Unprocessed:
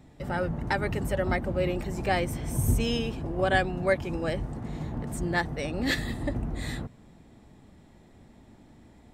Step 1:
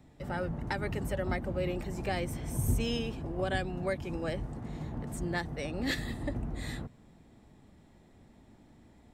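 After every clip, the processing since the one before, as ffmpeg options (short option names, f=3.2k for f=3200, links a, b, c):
-filter_complex "[0:a]acrossover=split=360|3000[a][b][c];[b]acompressor=threshold=-27dB:ratio=6[d];[a][d][c]amix=inputs=3:normalize=0,volume=-4.5dB"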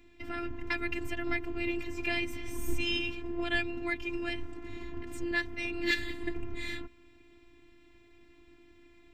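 -af "equalizer=f=160:t=o:w=0.67:g=5,equalizer=f=630:t=o:w=0.67:g=-11,equalizer=f=2.5k:t=o:w=0.67:g=11,equalizer=f=10k:t=o:w=0.67:g=-11,afftfilt=real='hypot(re,im)*cos(PI*b)':imag='0':win_size=512:overlap=0.75,volume=4.5dB"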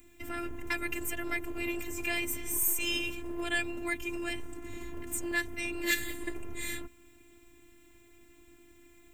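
-filter_complex "[0:a]acrossover=split=430[a][b];[a]volume=34.5dB,asoftclip=hard,volume=-34.5dB[c];[b]aexciter=amount=9.6:drive=3.2:freq=6.8k[d];[c][d]amix=inputs=2:normalize=0"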